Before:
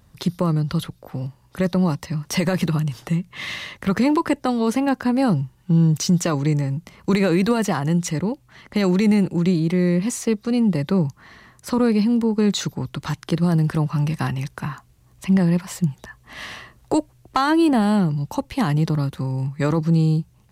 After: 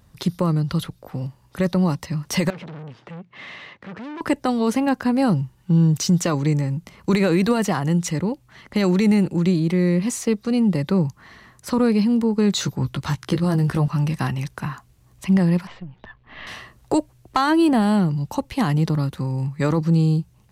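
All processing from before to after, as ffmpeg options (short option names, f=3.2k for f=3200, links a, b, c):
-filter_complex "[0:a]asettb=1/sr,asplit=3[a][b][c];[a]atrim=end=2.504[d];[b]atrim=start=2.5:end=4.21,asetpts=PTS-STARTPTS,afade=t=in:d=0.004:c=qsin,afade=t=out:st=1.706:d=0.004:c=qsin,aeval=exprs='(tanh(39.8*val(0)+0.7)-tanh(0.7))/39.8':c=same,highpass=150,lowpass=2.8k[e];[c]atrim=start=4.206[f];[d][e]acrossfade=d=0.004:c1=hsin:c2=qsin[g];[g][f]acrossfade=d=0.004:c1=qsin:c2=hsin,asettb=1/sr,asplit=3[h][i][j];[h]atrim=end=12.544[k];[i]atrim=start=12.54:end=13.88,asetpts=PTS-STARTPTS,afade=t=in:d=0.004:c=qsin,afade=t=out:st=1.336:d=0.004:c=qsin,equalizer=f=97:w=2.8:g=7.5,asplit=2[l][m];[m]adelay=15,volume=-6dB[n];[l][n]amix=inputs=2:normalize=0,atrim=end_sample=59094[o];[j]atrim=start=13.876[p];[k][o]acrossfade=d=0.004:c1=hsin:c2=qsin[q];[q][p]acrossfade=d=0.004:c1=qsin:c2=hsin,asettb=1/sr,asplit=3[r][s][t];[r]atrim=end=15.674[u];[s]atrim=start=15.67:end=16.47,asetpts=PTS-STARTPTS,afade=t=in:d=0.004:c=qsin,afade=t=out:st=0.796:d=0.004:c=qsin,aeval=exprs='if(lt(val(0),0),0.447*val(0),val(0))':c=same,lowpass=f=3.4k:w=0.5412,lowpass=f=3.4k:w=1.3066,acompressor=threshold=-31dB:ratio=6:attack=3.2:release=140:knee=1:detection=peak[v];[t]atrim=start=16.466[w];[u][v]acrossfade=d=0.004:c1=hsin:c2=qsin[x];[x][w]acrossfade=d=0.004:c1=qsin:c2=hsin"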